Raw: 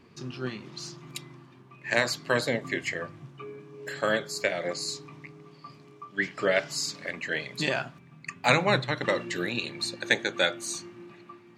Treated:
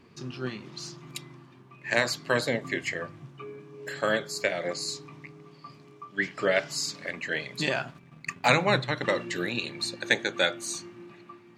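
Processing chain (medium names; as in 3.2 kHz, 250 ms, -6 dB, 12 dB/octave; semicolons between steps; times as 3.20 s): 7.88–8.48 s: waveshaping leveller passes 1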